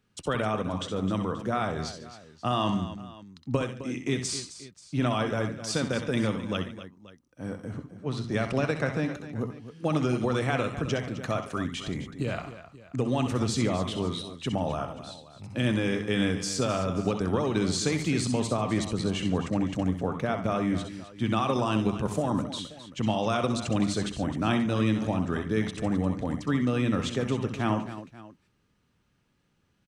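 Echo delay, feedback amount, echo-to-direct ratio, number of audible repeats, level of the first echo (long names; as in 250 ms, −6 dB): 64 ms, repeats not evenly spaced, −6.0 dB, 4, −7.5 dB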